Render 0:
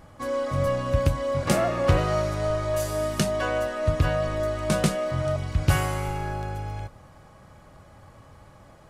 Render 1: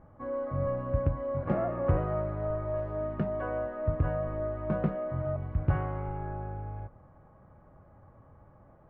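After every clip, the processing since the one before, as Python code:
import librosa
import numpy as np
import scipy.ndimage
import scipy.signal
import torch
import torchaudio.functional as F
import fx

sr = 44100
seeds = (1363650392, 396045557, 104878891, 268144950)

y = scipy.signal.sosfilt(scipy.signal.bessel(4, 1100.0, 'lowpass', norm='mag', fs=sr, output='sos'), x)
y = F.gain(torch.from_numpy(y), -5.5).numpy()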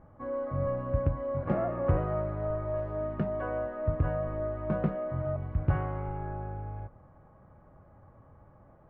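y = x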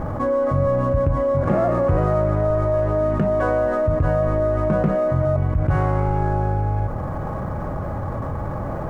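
y = scipy.ndimage.median_filter(x, 9, mode='constant')
y = fx.env_flatten(y, sr, amount_pct=70)
y = F.gain(torch.from_numpy(y), 5.0).numpy()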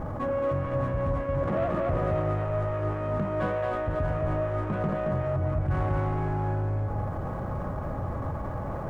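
y = 10.0 ** (-16.0 / 20.0) * np.tanh(x / 10.0 ** (-16.0 / 20.0))
y = y + 10.0 ** (-3.5 / 20.0) * np.pad(y, (int(224 * sr / 1000.0), 0))[:len(y)]
y = F.gain(torch.from_numpy(y), -6.5).numpy()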